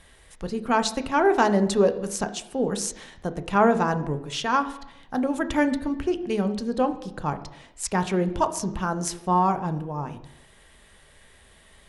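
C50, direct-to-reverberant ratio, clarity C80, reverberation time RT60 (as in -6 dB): 13.5 dB, 8.0 dB, 15.5 dB, 0.85 s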